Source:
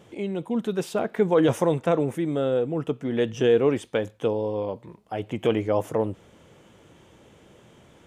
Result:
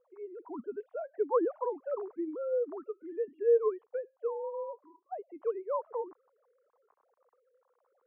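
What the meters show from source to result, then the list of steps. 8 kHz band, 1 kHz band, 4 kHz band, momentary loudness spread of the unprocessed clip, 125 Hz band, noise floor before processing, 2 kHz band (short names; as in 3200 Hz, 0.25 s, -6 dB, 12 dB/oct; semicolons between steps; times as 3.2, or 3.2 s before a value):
n/a, -7.5 dB, under -40 dB, 11 LU, under -40 dB, -55 dBFS, under -20 dB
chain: sine-wave speech; ladder low-pass 1200 Hz, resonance 65%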